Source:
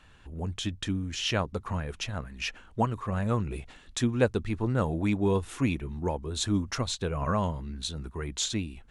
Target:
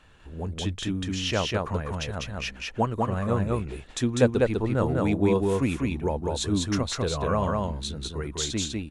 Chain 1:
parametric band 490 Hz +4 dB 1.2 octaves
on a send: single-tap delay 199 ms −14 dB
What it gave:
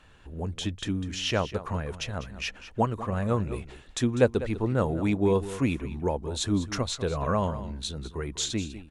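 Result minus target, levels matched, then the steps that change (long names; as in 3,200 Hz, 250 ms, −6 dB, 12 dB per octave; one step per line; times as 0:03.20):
echo-to-direct −12 dB
change: single-tap delay 199 ms −2 dB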